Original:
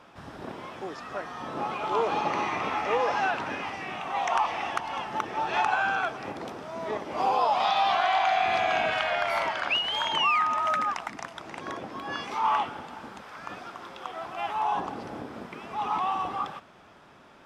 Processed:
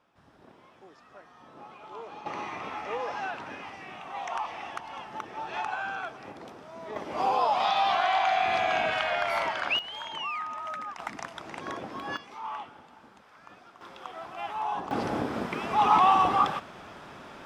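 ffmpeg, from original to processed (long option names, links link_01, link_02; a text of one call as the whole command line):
ffmpeg -i in.wav -af "asetnsamples=nb_out_samples=441:pad=0,asendcmd='2.26 volume volume -7.5dB;6.96 volume volume -1dB;9.79 volume volume -10dB;10.99 volume volume -0.5dB;12.17 volume volume -12dB;13.81 volume volume -4dB;14.91 volume volume 8dB',volume=-16dB" out.wav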